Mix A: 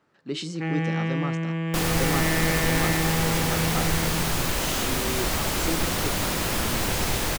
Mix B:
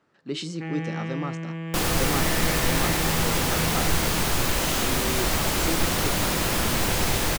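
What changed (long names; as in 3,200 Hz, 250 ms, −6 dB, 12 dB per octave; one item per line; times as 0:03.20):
first sound −5.0 dB
second sound: send +8.5 dB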